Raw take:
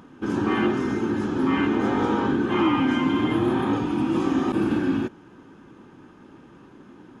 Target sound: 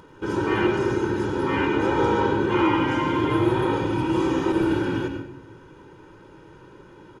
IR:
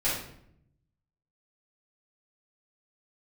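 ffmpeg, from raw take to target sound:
-filter_complex "[0:a]aecho=1:1:2.1:0.77,asplit=2[a][b];[1:a]atrim=start_sample=2205,adelay=83[c];[b][c]afir=irnorm=-1:irlink=0,volume=-15.5dB[d];[a][d]amix=inputs=2:normalize=0"

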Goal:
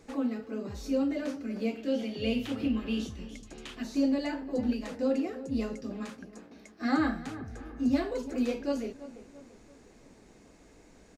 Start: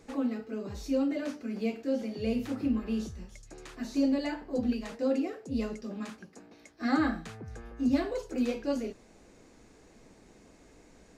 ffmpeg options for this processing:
-filter_complex "[0:a]asettb=1/sr,asplit=3[a][b][c];[a]atrim=end=1.774[d];[b]atrim=start=1.77:end=3.83,asetpts=PTS-STARTPTS,afade=t=in:d=0.004:c=qsin,afade=t=out:st=2.056:d=0.004:c=qsin,equalizer=f=3.1k:t=o:w=0.63:g=12[e];[c]atrim=start=3.826[f];[d][e]acrossfade=d=0.004:c1=hsin:c2=qsin[g];[g][f]acrossfade=d=0.004:c1=qsin:c2=hsin,asplit=2[h][i];[i]adelay=337,lowpass=f=2.1k:p=1,volume=-14.5dB,asplit=2[j][k];[k]adelay=337,lowpass=f=2.1k:p=1,volume=0.47,asplit=2[l][m];[m]adelay=337,lowpass=f=2.1k:p=1,volume=0.47,asplit=2[n][o];[o]adelay=337,lowpass=f=2.1k:p=1,volume=0.47[p];[h][j][l][n][p]amix=inputs=5:normalize=0"

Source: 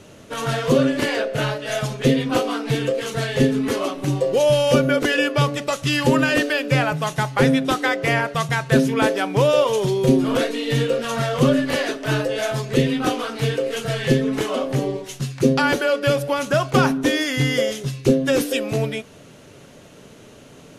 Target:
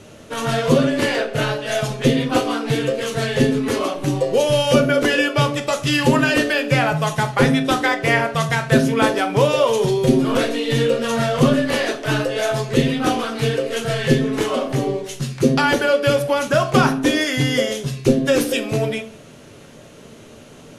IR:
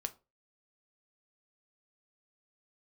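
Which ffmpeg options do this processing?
-filter_complex "[1:a]atrim=start_sample=2205,afade=t=out:st=0.16:d=0.01,atrim=end_sample=7497,asetrate=24255,aresample=44100[a];[0:a][a]afir=irnorm=-1:irlink=0"

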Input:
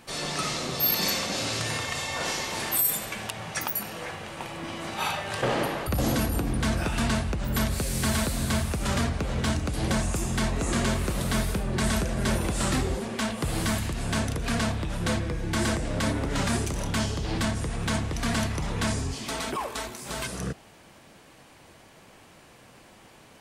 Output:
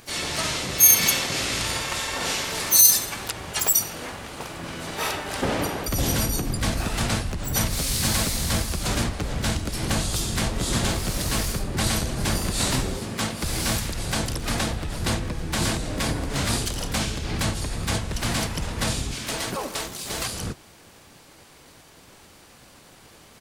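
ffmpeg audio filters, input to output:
-filter_complex "[0:a]crystalizer=i=1.5:c=0,asplit=4[a][b][c][d];[b]asetrate=22050,aresample=44100,atempo=2,volume=0dB[e];[c]asetrate=33038,aresample=44100,atempo=1.33484,volume=-5dB[f];[d]asetrate=55563,aresample=44100,atempo=0.793701,volume=-10dB[g];[a][e][f][g]amix=inputs=4:normalize=0,volume=-3dB"

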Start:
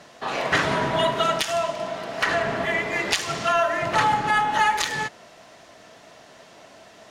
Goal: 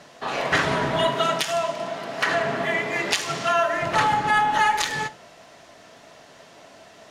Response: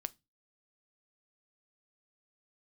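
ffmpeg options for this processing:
-filter_complex "[0:a]asettb=1/sr,asplit=3[a][b][c];[a]atrim=end=1.054[d];[b]atrim=start=1.05:end=3.74,asetpts=PTS-STARTPTS,afade=t=in:d=0.004:c=qsin,afade=t=out:st=2.686:d=0.004:c=qsin,highpass=f=110:w=0.5412,highpass=f=110:w=1.3066[e];[c]atrim=start=3.736[f];[d][e]acrossfade=d=0.004:c1=hsin:c2=qsin[g];[g][f]acrossfade=d=0.004:c1=qsin:c2=hsin[h];[1:a]atrim=start_sample=2205,asetrate=29547,aresample=44100[i];[h][i]afir=irnorm=-1:irlink=0"

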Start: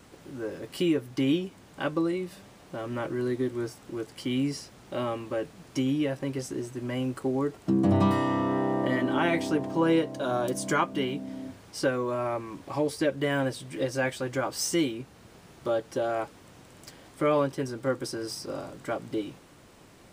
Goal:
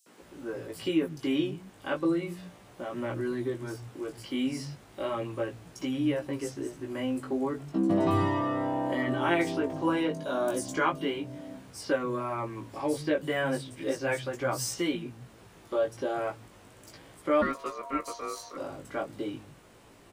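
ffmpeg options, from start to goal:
-filter_complex "[0:a]acrossover=split=170|5100[a][b][c];[b]adelay=60[d];[a]adelay=210[e];[e][d][c]amix=inputs=3:normalize=0,flanger=delay=16.5:depth=3.2:speed=0.34,asplit=3[f][g][h];[f]afade=t=out:st=17.41:d=0.02[i];[g]aeval=exprs='val(0)*sin(2*PI*820*n/s)':c=same,afade=t=in:st=17.41:d=0.02,afade=t=out:st=18.56:d=0.02[j];[h]afade=t=in:st=18.56:d=0.02[k];[i][j][k]amix=inputs=3:normalize=0,volume=2dB"

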